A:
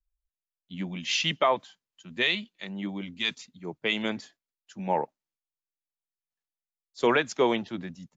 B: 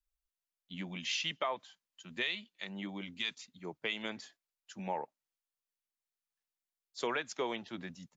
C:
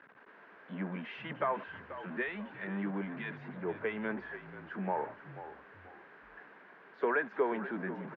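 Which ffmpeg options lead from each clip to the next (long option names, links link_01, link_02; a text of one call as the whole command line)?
ffmpeg -i in.wav -af "lowshelf=frequency=470:gain=-7.5,acompressor=threshold=-39dB:ratio=2" out.wav
ffmpeg -i in.wav -filter_complex "[0:a]aeval=exprs='val(0)+0.5*0.0119*sgn(val(0))':channel_layout=same,highpass=frequency=170:width=0.5412,highpass=frequency=170:width=1.3066,equalizer=frequency=200:width_type=q:width=4:gain=6,equalizer=frequency=290:width_type=q:width=4:gain=3,equalizer=frequency=420:width_type=q:width=4:gain=9,equalizer=frequency=640:width_type=q:width=4:gain=3,equalizer=frequency=1000:width_type=q:width=4:gain=5,equalizer=frequency=1600:width_type=q:width=4:gain=10,lowpass=frequency=2000:width=0.5412,lowpass=frequency=2000:width=1.3066,asplit=4[link_01][link_02][link_03][link_04];[link_02]adelay=485,afreqshift=-49,volume=-13dB[link_05];[link_03]adelay=970,afreqshift=-98,volume=-22.6dB[link_06];[link_04]adelay=1455,afreqshift=-147,volume=-32.3dB[link_07];[link_01][link_05][link_06][link_07]amix=inputs=4:normalize=0,volume=-3dB" out.wav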